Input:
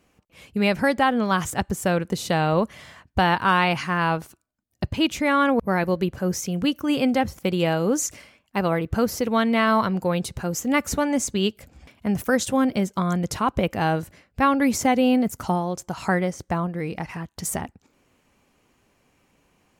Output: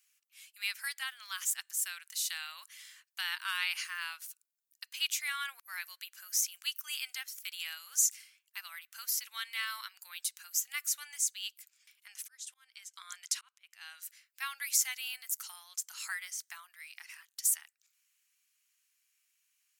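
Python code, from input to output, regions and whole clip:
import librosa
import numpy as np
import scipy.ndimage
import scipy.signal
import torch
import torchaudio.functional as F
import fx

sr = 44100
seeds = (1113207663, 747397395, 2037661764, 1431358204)

y = fx.chain(x, sr, fx.lowpass(hz=8700.0, slope=12),
    fx.auto_swell(attack_ms=668.0), at=(12.06, 14.02))
y = np.diff(y, prepend=0.0)
y = fx.rider(y, sr, range_db=3, speed_s=2.0)
y = scipy.signal.sosfilt(scipy.signal.butter(4, 1400.0, 'highpass', fs=sr, output='sos'), y)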